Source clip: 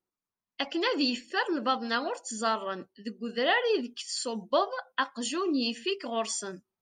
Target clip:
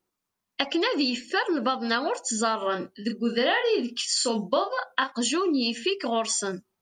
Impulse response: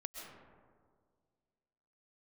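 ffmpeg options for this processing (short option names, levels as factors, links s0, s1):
-filter_complex "[0:a]acompressor=threshold=0.0282:ratio=5,asettb=1/sr,asplit=3[s0][s1][s2];[s0]atrim=end=2.594[s3];[s1]atrim=start=2.59:end=5.12,asetpts=PTS-STARTPTS,afade=t=in:d=0.004:c=qsin,afade=t=out:st=2.526:d=0.004:c=qsin,asplit=2[s4][s5];[s5]adelay=34,volume=0.531[s6];[s4][s6]amix=inputs=2:normalize=0,atrim=end_sample=111573[s7];[s2]atrim=start=5.116[s8];[s3][s7]acrossfade=d=0.004:c1=hsin:c2=qsin[s9];[s9][s8]acrossfade=d=0.004:c1=qsin:c2=hsin,volume=2.82"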